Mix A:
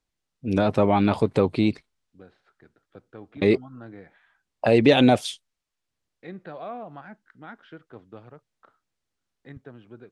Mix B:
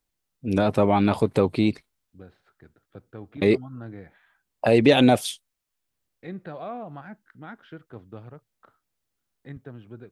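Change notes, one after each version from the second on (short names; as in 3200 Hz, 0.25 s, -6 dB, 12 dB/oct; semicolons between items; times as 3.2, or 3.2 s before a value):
second voice: remove HPF 230 Hz 6 dB/oct; master: remove LPF 7500 Hz 12 dB/oct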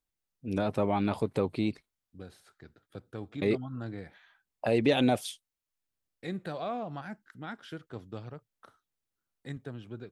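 first voice -8.5 dB; second voice: remove LPF 2400 Hz 12 dB/oct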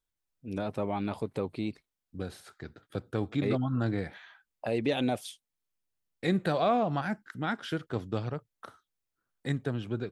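first voice -4.0 dB; second voice +9.0 dB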